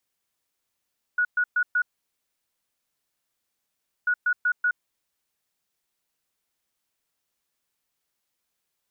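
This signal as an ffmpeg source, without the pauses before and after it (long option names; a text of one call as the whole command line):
ffmpeg -f lavfi -i "aevalsrc='0.112*sin(2*PI*1460*t)*clip(min(mod(mod(t,2.89),0.19),0.07-mod(mod(t,2.89),0.19))/0.005,0,1)*lt(mod(t,2.89),0.76)':duration=5.78:sample_rate=44100" out.wav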